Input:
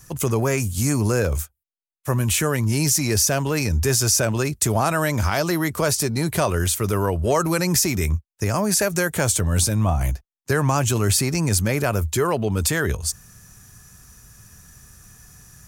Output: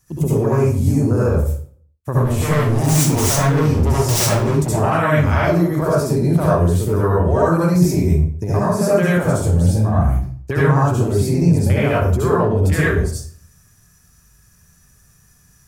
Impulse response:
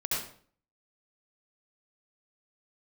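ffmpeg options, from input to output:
-filter_complex "[0:a]afwtdn=0.0631,asettb=1/sr,asplit=3[a][b][c];[a]atrim=end=2.164[d];[b]atrim=start=2.16:end=4.69,asetpts=PTS-STARTPTS,afade=t=in:d=0.004:c=qsin,afade=t=out:st=2.526:d=0.004:c=qsin,aeval=exprs='0.112*(abs(mod(val(0)/0.112+3,4)-2)-1)':c=same[e];[c]atrim=start=4.686[f];[d][e]acrossfade=d=0.004:c1=hsin:c2=qsin[g];[g][f]acrossfade=d=0.004:c1=qsin:c2=hsin,acompressor=threshold=-25dB:ratio=2.5[h];[1:a]atrim=start_sample=2205[i];[h][i]afir=irnorm=-1:irlink=0,volume=4.5dB"

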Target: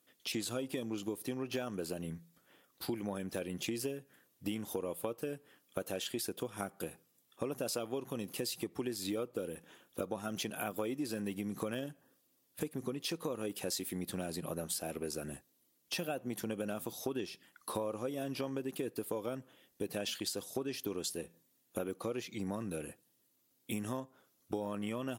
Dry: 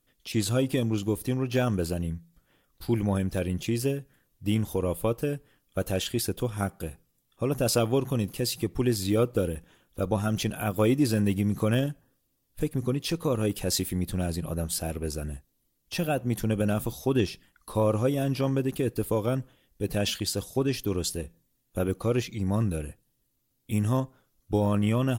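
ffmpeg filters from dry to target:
-af "highpass=240,acompressor=threshold=-37dB:ratio=6,volume=2dB"

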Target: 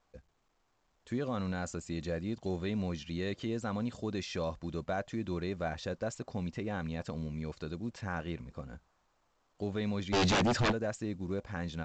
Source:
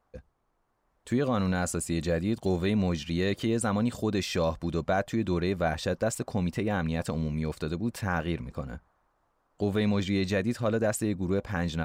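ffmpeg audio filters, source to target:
-filter_complex "[0:a]asplit=3[a][b][c];[a]afade=t=out:st=10.12:d=0.02[d];[b]aeval=exprs='0.158*sin(PI/2*4.47*val(0)/0.158)':c=same,afade=t=in:st=10.12:d=0.02,afade=t=out:st=10.71:d=0.02[e];[c]afade=t=in:st=10.71:d=0.02[f];[d][e][f]amix=inputs=3:normalize=0,volume=-8dB" -ar 16000 -c:a pcm_mulaw

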